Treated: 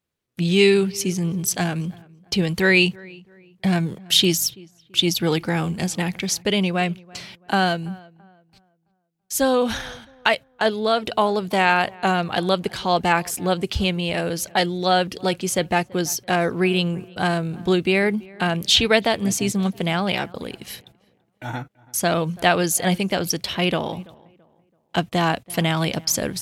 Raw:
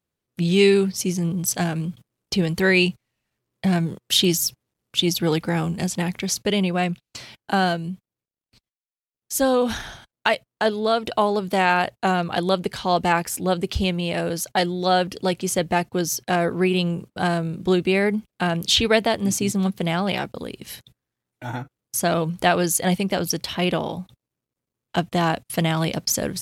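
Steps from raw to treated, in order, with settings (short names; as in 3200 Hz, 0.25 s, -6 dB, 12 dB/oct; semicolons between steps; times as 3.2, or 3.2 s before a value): bell 2600 Hz +3 dB 1.9 oct; on a send: darkening echo 0.333 s, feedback 35%, low-pass 1900 Hz, level -23 dB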